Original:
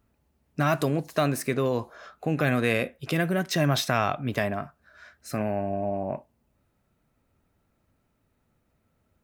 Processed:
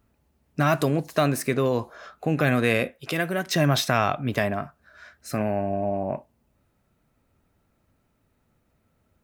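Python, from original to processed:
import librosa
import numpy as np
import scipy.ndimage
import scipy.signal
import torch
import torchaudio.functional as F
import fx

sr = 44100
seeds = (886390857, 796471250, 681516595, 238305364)

y = fx.low_shelf(x, sr, hz=240.0, db=-10.5, at=(2.91, 3.46))
y = y * 10.0 ** (2.5 / 20.0)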